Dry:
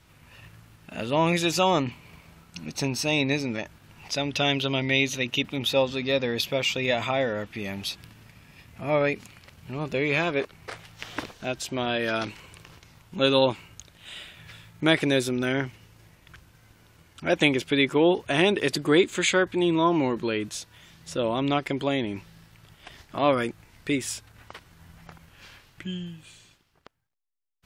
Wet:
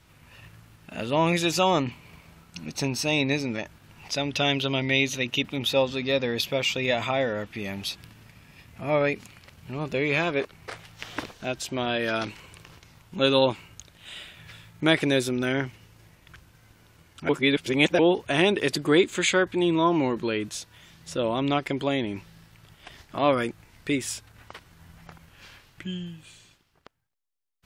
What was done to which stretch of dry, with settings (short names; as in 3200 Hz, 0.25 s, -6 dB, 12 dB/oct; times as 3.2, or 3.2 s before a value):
17.29–17.99 reverse